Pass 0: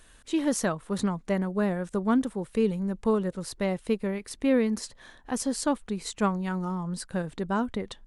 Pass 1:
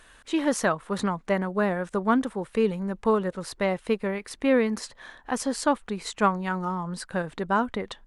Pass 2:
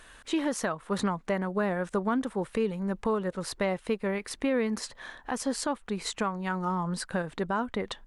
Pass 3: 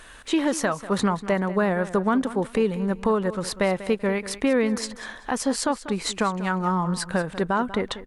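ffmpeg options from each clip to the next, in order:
-af "equalizer=f=1.3k:w=0.36:g=9.5,volume=-2.5dB"
-af "alimiter=limit=-20.5dB:level=0:latency=1:release=360,volume=1.5dB"
-af "aecho=1:1:192|384|576:0.178|0.0427|0.0102,volume=6dB"

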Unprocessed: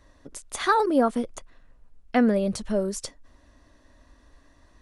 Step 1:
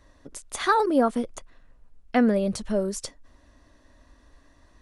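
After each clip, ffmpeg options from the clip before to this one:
-af anull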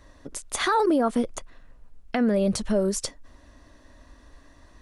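-af "alimiter=limit=-19dB:level=0:latency=1:release=84,volume=4.5dB"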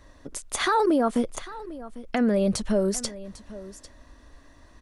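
-af "aecho=1:1:799:0.141"

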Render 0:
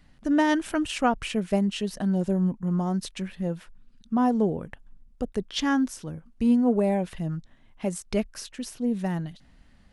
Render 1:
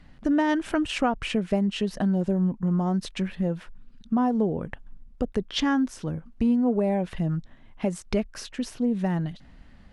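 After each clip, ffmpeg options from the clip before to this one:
-af "aemphasis=mode=reproduction:type=50kf,acompressor=threshold=-29dB:ratio=2.5,volume=6dB"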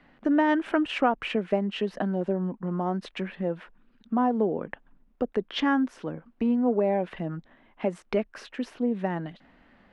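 -filter_complex "[0:a]acrossover=split=230 3200:gain=0.126 1 0.141[a][b][c];[a][b][c]amix=inputs=3:normalize=0,volume=2dB"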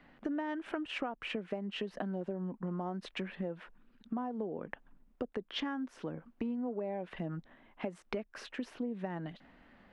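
-af "acompressor=threshold=-32dB:ratio=6,volume=-2.5dB"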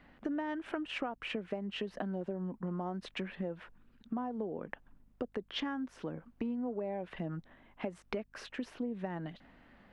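-af "aeval=exprs='val(0)+0.000355*(sin(2*PI*50*n/s)+sin(2*PI*2*50*n/s)/2+sin(2*PI*3*50*n/s)/3+sin(2*PI*4*50*n/s)/4+sin(2*PI*5*50*n/s)/5)':c=same"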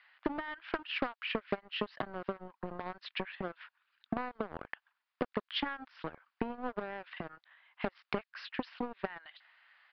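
-filter_complex "[0:a]acrossover=split=1100[a][b];[a]acrusher=bits=4:mix=0:aa=0.5[c];[c][b]amix=inputs=2:normalize=0,aresample=11025,aresample=44100,volume=3.5dB"

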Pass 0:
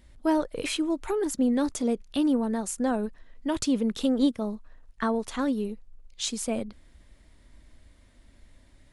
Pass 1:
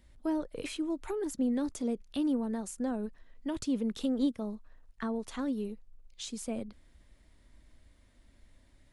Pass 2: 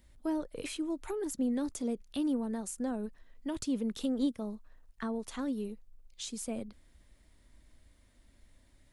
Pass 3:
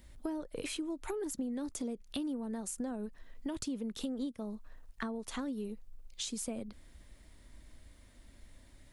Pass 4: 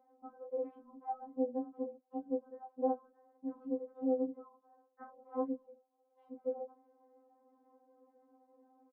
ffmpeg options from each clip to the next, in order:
-filter_complex "[0:a]acrossover=split=440[a][b];[b]acompressor=threshold=-36dB:ratio=2.5[c];[a][c]amix=inputs=2:normalize=0,volume=-5.5dB"
-af "highshelf=f=7.9k:g=7,volume=-1.5dB"
-af "acompressor=threshold=-41dB:ratio=6,volume=5.5dB"
-filter_complex "[0:a]asuperpass=centerf=560:order=8:qfactor=0.86,asplit=2[a][b];[b]adelay=18,volume=-3.5dB[c];[a][c]amix=inputs=2:normalize=0,afftfilt=real='re*3.46*eq(mod(b,12),0)':imag='im*3.46*eq(mod(b,12),0)':win_size=2048:overlap=0.75,volume=8.5dB"

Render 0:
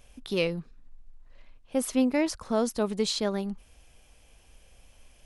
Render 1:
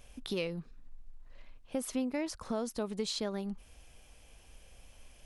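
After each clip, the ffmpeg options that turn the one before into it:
-af "acompressor=threshold=-35dB:ratio=2.5"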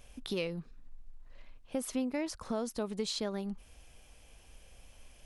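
-af anull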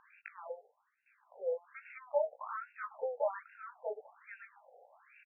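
-af "flanger=delay=15.5:depth=6.6:speed=1,aecho=1:1:1062:0.501,afftfilt=real='re*between(b*sr/1024,580*pow(2000/580,0.5+0.5*sin(2*PI*1.2*pts/sr))/1.41,580*pow(2000/580,0.5+0.5*sin(2*PI*1.2*pts/sr))*1.41)':imag='im*between(b*sr/1024,580*pow(2000/580,0.5+0.5*sin(2*PI*1.2*pts/sr))/1.41,580*pow(2000/580,0.5+0.5*sin(2*PI*1.2*pts/sr))*1.41)':win_size=1024:overlap=0.75,volume=11dB"

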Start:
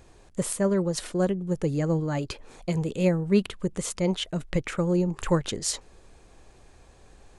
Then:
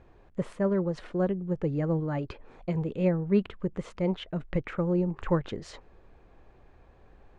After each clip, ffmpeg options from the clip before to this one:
-af "lowpass=2.1k,volume=-2.5dB"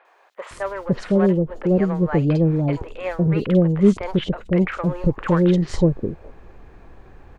-filter_complex "[0:a]asplit=2[a][b];[b]volume=29dB,asoftclip=hard,volume=-29dB,volume=-8dB[c];[a][c]amix=inputs=2:normalize=0,acrossover=split=630|3600[d][e][f];[f]adelay=50[g];[d]adelay=510[h];[h][e][g]amix=inputs=3:normalize=0,volume=9dB"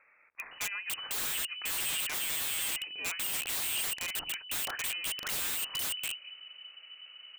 -af "lowpass=f=2.6k:t=q:w=0.5098,lowpass=f=2.6k:t=q:w=0.6013,lowpass=f=2.6k:t=q:w=0.9,lowpass=f=2.6k:t=q:w=2.563,afreqshift=-3000,aeval=exprs='(mod(10.6*val(0)+1,2)-1)/10.6':c=same,volume=-8dB"

